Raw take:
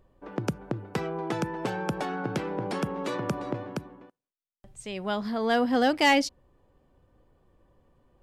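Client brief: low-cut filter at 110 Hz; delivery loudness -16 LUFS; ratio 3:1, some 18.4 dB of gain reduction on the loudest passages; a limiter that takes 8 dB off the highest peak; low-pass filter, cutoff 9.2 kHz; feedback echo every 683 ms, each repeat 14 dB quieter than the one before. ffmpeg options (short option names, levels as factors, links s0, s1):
-af "highpass=110,lowpass=9200,acompressor=threshold=0.00631:ratio=3,alimiter=level_in=3.16:limit=0.0631:level=0:latency=1,volume=0.316,aecho=1:1:683|1366:0.2|0.0399,volume=28.2"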